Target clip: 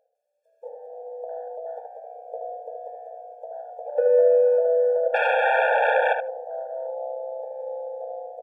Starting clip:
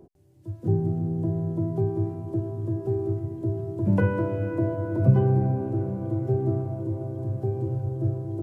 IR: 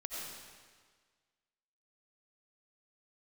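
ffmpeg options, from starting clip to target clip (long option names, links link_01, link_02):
-filter_complex "[0:a]bandreject=frequency=1500:width=28,alimiter=limit=-18.5dB:level=0:latency=1:release=96,firequalizer=gain_entry='entry(130,0);entry(230,-22);entry(500,13);entry(900,0);entry(1700,8);entry(4000,2)':delay=0.05:min_phase=1,aecho=1:1:82|164:0.224|0.0358,asplit=2[link_01][link_02];[1:a]atrim=start_sample=2205,afade=type=out:start_time=0.34:duration=0.01,atrim=end_sample=15435[link_03];[link_02][link_03]afir=irnorm=-1:irlink=0,volume=-13dB[link_04];[link_01][link_04]amix=inputs=2:normalize=0,asettb=1/sr,asplit=3[link_05][link_06][link_07];[link_05]atrim=end=5.144[link_08];[link_06]atrim=start=5.14:end=6.13,asetpts=PTS-STARTPTS,afade=type=in:duration=0.004:curve=qsin,afade=type=out:start_time=0.986:duration=0.004:curve=qsin,aeval=exprs='0.188*sin(PI/2*6.31*val(0)/0.188)':channel_layout=same[link_09];[link_07]atrim=start=6.126[link_10];[link_08][link_09]acrossfade=duration=0.004:curve1=hsin:curve2=qsin[link_11];[link_11][link_10]acrossfade=duration=0.004:curve1=qsin:curve2=hsin,afwtdn=0.0447,asettb=1/sr,asplit=3[link_12][link_13][link_14];[link_12]atrim=end=2.264[link_15];[link_13]atrim=start=2.26:end=2.77,asetpts=PTS-STARTPTS,afade=type=in:duration=0.004:curve=qsin,afade=type=out:start_time=0.506:duration=0.004:curve=qsin,equalizer=frequency=400:width_type=o:width=0.5:gain=11[link_16];[link_14]atrim=start=2.766[link_17];[link_15][link_16]acrossfade=duration=0.004:curve1=hsin:curve2=qsin[link_18];[link_18][link_17]acrossfade=duration=0.004:curve1=qsin:curve2=hsin,asplit=2[link_19][link_20];[link_20]adelay=75,lowpass=frequency=1300:poles=1,volume=-3.5dB,asplit=2[link_21][link_22];[link_22]adelay=75,lowpass=frequency=1300:poles=1,volume=0.16,asplit=2[link_23][link_24];[link_24]adelay=75,lowpass=frequency=1300:poles=1,volume=0.16[link_25];[link_21][link_23][link_25]amix=inputs=3:normalize=0[link_26];[link_19][link_26]amix=inputs=2:normalize=0,afftfilt=real='re*eq(mod(floor(b*sr/1024/460),2),1)':imag='im*eq(mod(floor(b*sr/1024/460),2),1)':win_size=1024:overlap=0.75"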